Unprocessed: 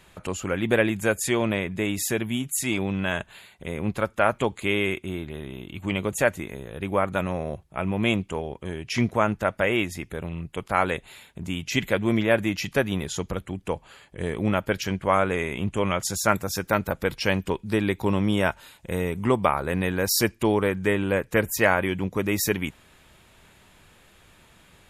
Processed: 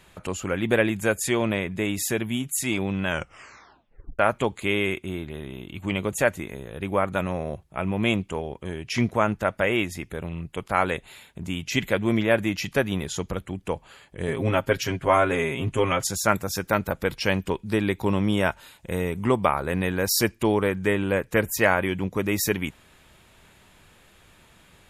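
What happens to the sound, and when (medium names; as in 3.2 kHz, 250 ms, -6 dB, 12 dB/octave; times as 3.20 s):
3.07 s: tape stop 1.12 s
14.27–16.07 s: comb 7.5 ms, depth 81%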